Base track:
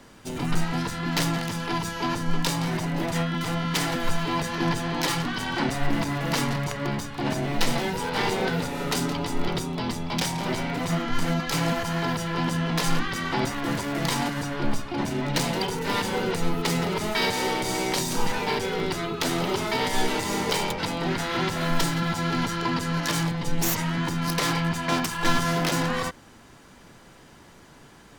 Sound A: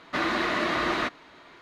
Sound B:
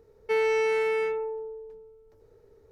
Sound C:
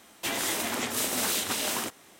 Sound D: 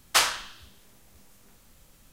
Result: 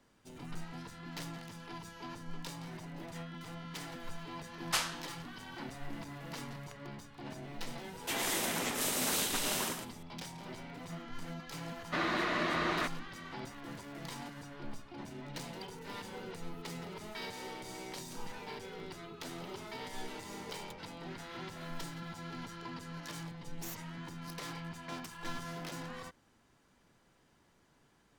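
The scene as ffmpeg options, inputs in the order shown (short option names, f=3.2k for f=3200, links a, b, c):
-filter_complex "[0:a]volume=-18.5dB[a];[3:a]aecho=1:1:112:0.501[b];[4:a]atrim=end=2.12,asetpts=PTS-STARTPTS,volume=-11dB,afade=t=in:d=0.004:c=hsin,afade=t=out:st=2.116:d=0.004:c=hsin,adelay=4580[c];[b]atrim=end=2.19,asetpts=PTS-STARTPTS,volume=-5.5dB,afade=t=in:d=0.004:c=hsin,afade=t=out:st=2.186:d=0.004:c=hsin,adelay=7840[d];[1:a]atrim=end=1.61,asetpts=PTS-STARTPTS,volume=-6.5dB,afade=t=in:d=0.004:c=hsin,afade=t=out:st=1.606:d=0.004:c=hsin,adelay=11790[e];[a][c][d][e]amix=inputs=4:normalize=0"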